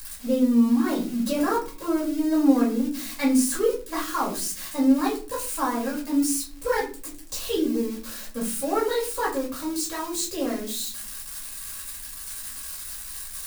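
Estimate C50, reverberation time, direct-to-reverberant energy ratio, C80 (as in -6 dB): 9.0 dB, 0.40 s, -5.0 dB, 13.5 dB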